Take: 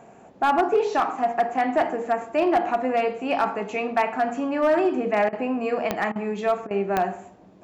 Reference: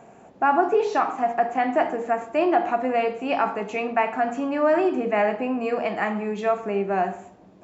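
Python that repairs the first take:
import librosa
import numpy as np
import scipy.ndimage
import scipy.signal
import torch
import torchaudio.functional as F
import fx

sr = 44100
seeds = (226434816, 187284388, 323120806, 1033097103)

y = fx.fix_declip(x, sr, threshold_db=-13.5)
y = fx.fix_declick_ar(y, sr, threshold=10.0)
y = fx.fix_interpolate(y, sr, at_s=(5.29, 6.12, 6.67), length_ms=36.0)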